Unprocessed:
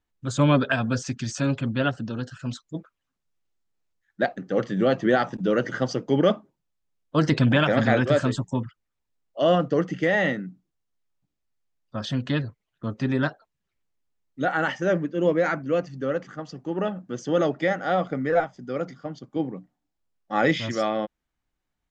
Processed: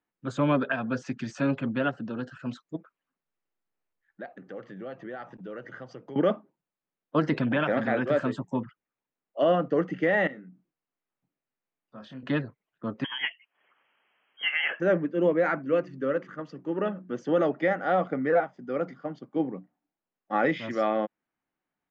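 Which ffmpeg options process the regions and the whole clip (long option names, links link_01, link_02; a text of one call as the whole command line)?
ffmpeg -i in.wav -filter_complex "[0:a]asettb=1/sr,asplit=3[link_01][link_02][link_03];[link_01]atrim=end=2.764[link_04];[link_02]atrim=start=2.76:end=6.16,asetpts=PTS-STARTPTS,afade=type=in:duration=0.004:curve=qsin,afade=type=out:start_time=3.396:duration=0.004:curve=qsin,asubboost=boost=11:cutoff=75,acompressor=threshold=-43dB:ratio=2.5:attack=3.2:release=140:knee=1:detection=peak[link_05];[link_03]atrim=start=6.156[link_06];[link_04][link_05]acrossfade=duration=0.004:curve1=hsin:curve2=qsin[link_07];[link_07][link_06]acrossfade=duration=0.004:curve1=qsin:curve2=hsin,asettb=1/sr,asplit=3[link_08][link_09][link_10];[link_08]atrim=end=10.274[link_11];[link_09]atrim=start=10.27:end=12.23,asetpts=PTS-STARTPTS,afade=type=in:duration=0.004:curve=qsin,afade=type=out:start_time=1.956:duration=0.004:curve=qsin,acompressor=threshold=-50dB:ratio=2:attack=3.2:release=140:knee=1:detection=peak,asplit=2[link_12][link_13];[link_13]adelay=23,volume=-6dB[link_14];[link_12][link_14]amix=inputs=2:normalize=0,atrim=end_sample=86436[link_15];[link_10]atrim=start=12.226[link_16];[link_11][link_15]acrossfade=duration=0.004:curve1=hsin:curve2=qsin[link_17];[link_17][link_16]acrossfade=duration=0.004:curve1=qsin:curve2=hsin,asettb=1/sr,asplit=3[link_18][link_19][link_20];[link_18]atrim=end=13.044[link_21];[link_19]atrim=start=13.04:end=14.8,asetpts=PTS-STARTPTS,afade=type=in:duration=0.004:curve=qsin,afade=type=out:start_time=1.756:duration=0.004:curve=qsin,highpass=390,lowpass=frequency=3000:width_type=q:width=0.5098,lowpass=frequency=3000:width_type=q:width=0.6013,lowpass=frequency=3000:width_type=q:width=0.9,lowpass=frequency=3000:width_type=q:width=2.563,afreqshift=-3500,acompressor=mode=upward:threshold=-46dB:ratio=2.5:attack=3.2:release=140:knee=2.83:detection=peak[link_22];[link_20]atrim=start=14.796[link_23];[link_21][link_22]acrossfade=duration=0.004:curve1=hsin:curve2=qsin[link_24];[link_24][link_23]acrossfade=duration=0.004:curve1=qsin:curve2=hsin,asettb=1/sr,asplit=3[link_25][link_26][link_27];[link_25]atrim=end=15.654[link_28];[link_26]atrim=start=15.65:end=17.1,asetpts=PTS-STARTPTS,afade=type=in:duration=0.004:curve=qsin,afade=type=out:start_time=1.446:duration=0.004:curve=qsin,equalizer=frequency=760:width_type=o:width=0.26:gain=-11.5,bandreject=frequency=60:width_type=h:width=6,bandreject=frequency=120:width_type=h:width=6,bandreject=frequency=180:width_type=h:width=6,bandreject=frequency=240:width_type=h:width=6,bandreject=frequency=300:width_type=h:width=6,bandreject=frequency=360:width_type=h:width=6[link_29];[link_27]atrim=start=17.096[link_30];[link_28][link_29]acrossfade=duration=0.004:curve1=hsin:curve2=qsin[link_31];[link_31][link_30]acrossfade=duration=0.004:curve1=qsin:curve2=hsin,equalizer=frequency=3400:width_type=o:width=0.3:gain=-2.5,alimiter=limit=-13dB:level=0:latency=1:release=424,acrossover=split=150 3100:gain=0.0708 1 0.141[link_32][link_33][link_34];[link_32][link_33][link_34]amix=inputs=3:normalize=0" out.wav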